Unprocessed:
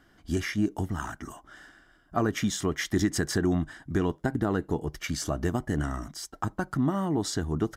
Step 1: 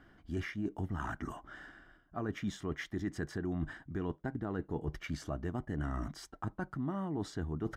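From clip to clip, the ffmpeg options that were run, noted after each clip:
-af "areverse,acompressor=threshold=-35dB:ratio=6,areverse,bass=f=250:g=2,treble=f=4k:g=-13"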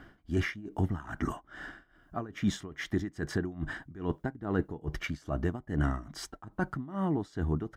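-af "tremolo=f=2.4:d=0.89,volume=9dB"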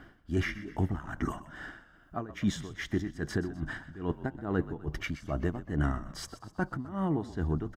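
-filter_complex "[0:a]asplit=6[a][b][c][d][e][f];[b]adelay=126,afreqshift=-47,volume=-15dB[g];[c]adelay=252,afreqshift=-94,volume=-20.8dB[h];[d]adelay=378,afreqshift=-141,volume=-26.7dB[i];[e]adelay=504,afreqshift=-188,volume=-32.5dB[j];[f]adelay=630,afreqshift=-235,volume=-38.4dB[k];[a][g][h][i][j][k]amix=inputs=6:normalize=0"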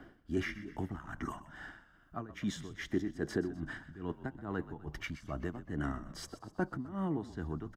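-filter_complex "[0:a]acrossover=split=230|800[a][b][c];[a]alimiter=level_in=7.5dB:limit=-24dB:level=0:latency=1:release=208,volume=-7.5dB[d];[b]aphaser=in_gain=1:out_gain=1:delay=1.2:decay=0.57:speed=0.31:type=triangular[e];[d][e][c]amix=inputs=3:normalize=0,volume=-4.5dB"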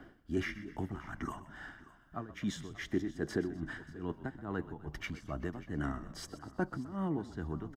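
-af "aecho=1:1:585:0.119"

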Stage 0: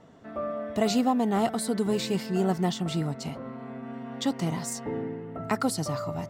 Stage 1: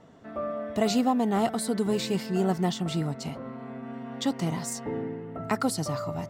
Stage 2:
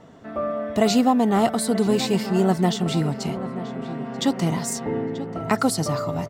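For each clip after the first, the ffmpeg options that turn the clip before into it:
-af anull
-filter_complex "[0:a]asplit=2[a][b];[b]adelay=935,lowpass=f=2.5k:p=1,volume=-13dB,asplit=2[c][d];[d]adelay=935,lowpass=f=2.5k:p=1,volume=0.53,asplit=2[e][f];[f]adelay=935,lowpass=f=2.5k:p=1,volume=0.53,asplit=2[g][h];[h]adelay=935,lowpass=f=2.5k:p=1,volume=0.53,asplit=2[i][j];[j]adelay=935,lowpass=f=2.5k:p=1,volume=0.53[k];[a][c][e][g][i][k]amix=inputs=6:normalize=0,volume=6dB"

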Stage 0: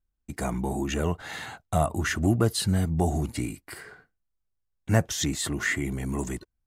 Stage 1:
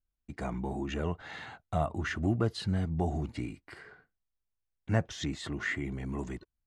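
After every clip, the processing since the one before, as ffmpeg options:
-af "lowpass=4k,volume=-6dB"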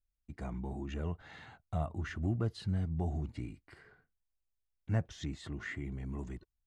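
-af "lowshelf=f=160:g=10,volume=-9dB"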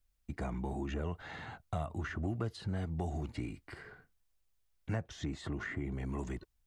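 -filter_complex "[0:a]acrossover=split=350|1500[a][b][c];[a]acompressor=threshold=-46dB:ratio=4[d];[b]acompressor=threshold=-49dB:ratio=4[e];[c]acompressor=threshold=-59dB:ratio=4[f];[d][e][f]amix=inputs=3:normalize=0,volume=8.5dB"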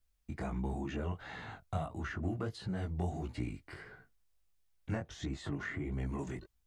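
-af "flanger=delay=15.5:depth=7.6:speed=1.5,volume=3dB"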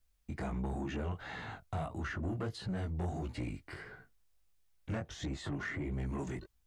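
-af "asoftclip=type=tanh:threshold=-33dB,volume=2.5dB"

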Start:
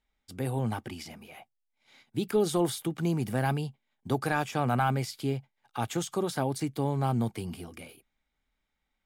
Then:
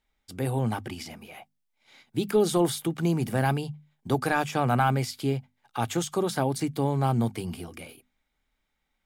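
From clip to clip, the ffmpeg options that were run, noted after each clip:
-af "bandreject=f=50:t=h:w=6,bandreject=f=100:t=h:w=6,bandreject=f=150:t=h:w=6,bandreject=f=200:t=h:w=6,bandreject=f=250:t=h:w=6,volume=3.5dB"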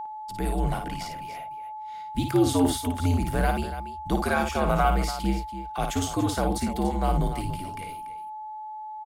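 -af "afreqshift=-77,aeval=exprs='val(0)+0.0251*sin(2*PI*860*n/s)':c=same,aecho=1:1:55.39|288.6:0.501|0.251"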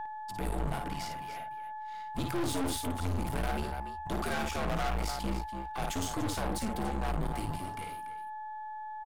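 -af "aeval=exprs='(tanh(31.6*val(0)+0.7)-tanh(0.7))/31.6':c=same"

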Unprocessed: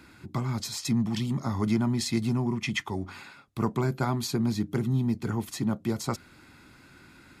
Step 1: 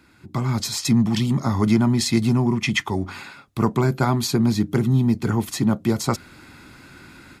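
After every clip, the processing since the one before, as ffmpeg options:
-af "dynaudnorm=f=230:g=3:m=11.5dB,volume=-3dB"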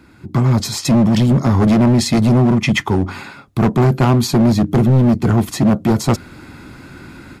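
-af "tiltshelf=f=1.1k:g=4,volume=15.5dB,asoftclip=hard,volume=-15.5dB,volume=6.5dB"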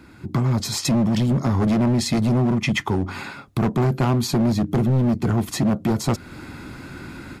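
-af "acompressor=threshold=-23dB:ratio=2"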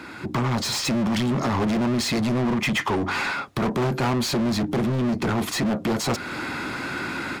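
-filter_complex "[0:a]asplit=2[a][b];[b]highpass=f=720:p=1,volume=25dB,asoftclip=type=tanh:threshold=-11.5dB[c];[a][c]amix=inputs=2:normalize=0,lowpass=f=3.8k:p=1,volume=-6dB,volume=-4.5dB"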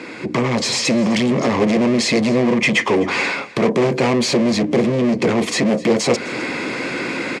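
-af "highpass=170,equalizer=f=490:t=q:w=4:g=9,equalizer=f=850:t=q:w=4:g=-5,equalizer=f=1.4k:t=q:w=4:g=-10,equalizer=f=2.2k:t=q:w=4:g=5,equalizer=f=3.7k:t=q:w=4:g=-3,lowpass=f=8.8k:w=0.5412,lowpass=f=8.8k:w=1.3066,aecho=1:1:256:0.1,volume=7dB"

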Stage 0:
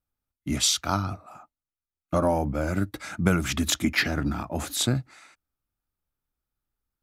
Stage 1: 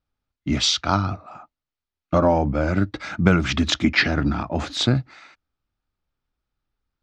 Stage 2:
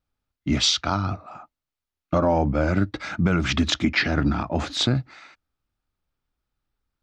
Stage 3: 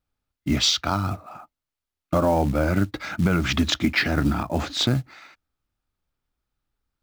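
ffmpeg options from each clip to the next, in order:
-af "lowpass=f=5.2k:w=0.5412,lowpass=f=5.2k:w=1.3066,volume=5.5dB"
-af "alimiter=limit=-9.5dB:level=0:latency=1:release=169"
-af "acrusher=bits=6:mode=log:mix=0:aa=0.000001"

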